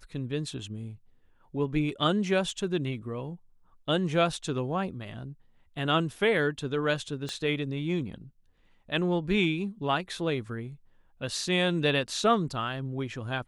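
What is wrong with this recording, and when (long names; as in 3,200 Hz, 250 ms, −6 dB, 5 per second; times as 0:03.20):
0:07.29: click −22 dBFS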